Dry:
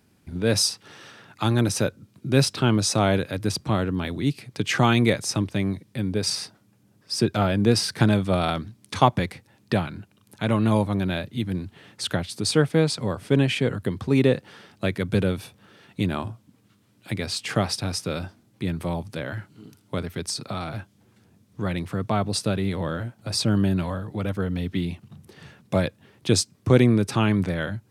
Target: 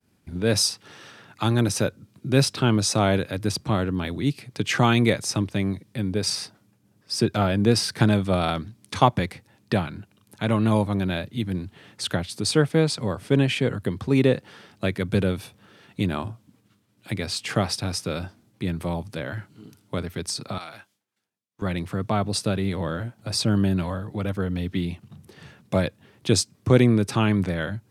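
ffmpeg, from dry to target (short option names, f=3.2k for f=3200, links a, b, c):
-filter_complex "[0:a]asettb=1/sr,asplit=3[a][b][c];[a]atrim=end=20.584[d];[b]atrim=start=20.58:end=21.62,asetpts=PTS-STARTPTS,afade=t=in:d=0.004:c=qsin,afade=t=out:st=1.036:d=0.004:c=qsin,highpass=f=1.4k:p=1[e];[c]atrim=start=21.616[f];[d][e]acrossfade=d=0.004:c1=hsin:c2=qsin[g];[g][f]acrossfade=d=0.004:c1=qsin:c2=hsin,agate=range=-33dB:threshold=-57dB:ratio=3:detection=peak"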